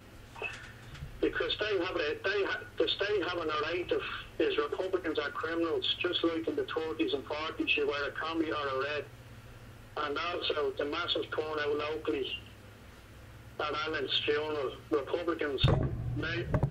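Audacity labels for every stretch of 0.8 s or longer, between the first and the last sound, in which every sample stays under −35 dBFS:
9.020000	9.970000	silence
12.360000	13.600000	silence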